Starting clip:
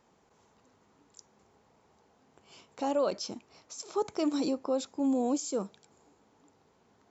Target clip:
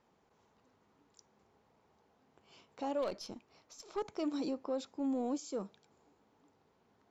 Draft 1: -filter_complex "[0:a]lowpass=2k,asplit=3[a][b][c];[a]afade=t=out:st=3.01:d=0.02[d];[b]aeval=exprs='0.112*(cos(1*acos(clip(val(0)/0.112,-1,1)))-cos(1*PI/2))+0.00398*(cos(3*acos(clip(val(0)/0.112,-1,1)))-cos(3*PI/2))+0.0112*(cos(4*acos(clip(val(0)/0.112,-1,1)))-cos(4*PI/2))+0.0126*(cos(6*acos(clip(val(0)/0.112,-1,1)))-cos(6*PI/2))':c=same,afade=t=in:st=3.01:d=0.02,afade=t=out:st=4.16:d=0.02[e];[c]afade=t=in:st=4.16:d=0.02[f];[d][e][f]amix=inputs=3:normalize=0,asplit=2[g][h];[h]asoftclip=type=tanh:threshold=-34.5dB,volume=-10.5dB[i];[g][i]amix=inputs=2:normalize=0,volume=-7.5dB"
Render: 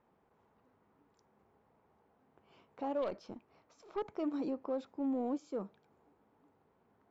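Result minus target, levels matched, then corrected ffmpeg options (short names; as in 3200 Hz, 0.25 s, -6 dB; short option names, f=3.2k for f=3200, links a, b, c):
4000 Hz band -9.5 dB
-filter_complex "[0:a]lowpass=5.3k,asplit=3[a][b][c];[a]afade=t=out:st=3.01:d=0.02[d];[b]aeval=exprs='0.112*(cos(1*acos(clip(val(0)/0.112,-1,1)))-cos(1*PI/2))+0.00398*(cos(3*acos(clip(val(0)/0.112,-1,1)))-cos(3*PI/2))+0.0112*(cos(4*acos(clip(val(0)/0.112,-1,1)))-cos(4*PI/2))+0.0126*(cos(6*acos(clip(val(0)/0.112,-1,1)))-cos(6*PI/2))':c=same,afade=t=in:st=3.01:d=0.02,afade=t=out:st=4.16:d=0.02[e];[c]afade=t=in:st=4.16:d=0.02[f];[d][e][f]amix=inputs=3:normalize=0,asplit=2[g][h];[h]asoftclip=type=tanh:threshold=-34.5dB,volume=-10.5dB[i];[g][i]amix=inputs=2:normalize=0,volume=-7.5dB"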